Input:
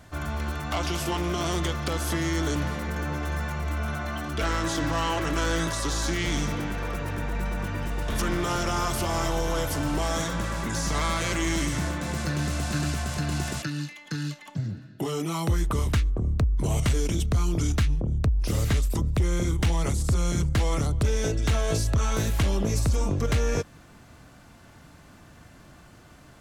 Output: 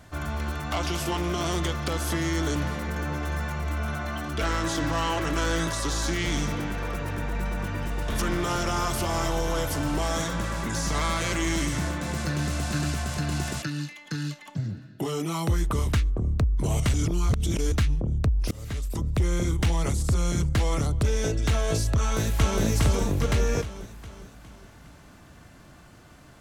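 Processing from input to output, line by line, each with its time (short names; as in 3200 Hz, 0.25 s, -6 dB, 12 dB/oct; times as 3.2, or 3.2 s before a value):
16.94–17.72 reverse
18.51–19.21 fade in linear, from -21.5 dB
21.99–22.62 echo throw 0.41 s, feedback 50%, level -1 dB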